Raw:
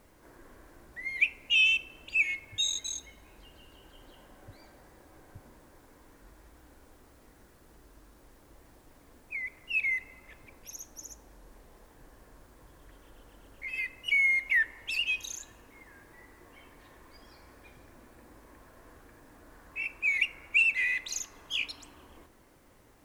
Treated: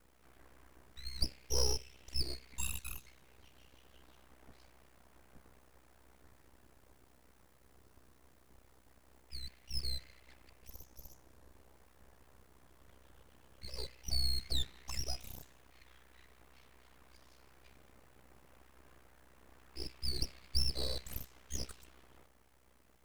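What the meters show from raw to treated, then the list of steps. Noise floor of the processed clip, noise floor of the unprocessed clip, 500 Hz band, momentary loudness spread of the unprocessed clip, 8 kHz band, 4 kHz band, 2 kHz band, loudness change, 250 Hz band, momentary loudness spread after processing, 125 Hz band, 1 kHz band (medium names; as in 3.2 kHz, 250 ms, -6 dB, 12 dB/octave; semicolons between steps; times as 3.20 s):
-66 dBFS, -59 dBFS, +4.5 dB, 20 LU, -5.0 dB, -6.0 dB, -29.0 dB, -12.0 dB, +0.5 dB, 19 LU, no reading, -2.5 dB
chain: ring modulator 32 Hz; full-wave rectifier; trim -3 dB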